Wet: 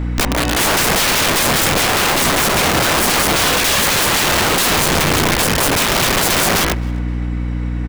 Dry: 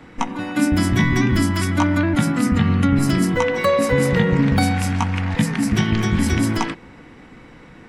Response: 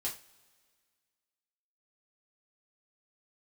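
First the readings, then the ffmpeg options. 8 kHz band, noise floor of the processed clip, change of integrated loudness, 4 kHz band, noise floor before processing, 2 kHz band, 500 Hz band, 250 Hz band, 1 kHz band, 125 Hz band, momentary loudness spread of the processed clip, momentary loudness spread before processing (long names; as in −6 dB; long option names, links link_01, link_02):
+16.5 dB, −20 dBFS, +5.0 dB, +15.0 dB, −44 dBFS, +9.0 dB, +3.5 dB, −3.5 dB, +8.5 dB, −2.5 dB, 7 LU, 5 LU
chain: -filter_complex "[0:a]aeval=exprs='val(0)+0.0447*(sin(2*PI*60*n/s)+sin(2*PI*2*60*n/s)/2+sin(2*PI*3*60*n/s)/3+sin(2*PI*4*60*n/s)/4+sin(2*PI*5*60*n/s)/5)':channel_layout=same,aeval=exprs='(mod(8.41*val(0)+1,2)-1)/8.41':channel_layout=same,asplit=2[link_01][link_02];[link_02]adelay=263,lowpass=frequency=3400:poles=1,volume=-22dB,asplit=2[link_03][link_04];[link_04]adelay=263,lowpass=frequency=3400:poles=1,volume=0.46,asplit=2[link_05][link_06];[link_06]adelay=263,lowpass=frequency=3400:poles=1,volume=0.46[link_07];[link_01][link_03][link_05][link_07]amix=inputs=4:normalize=0,volume=8.5dB"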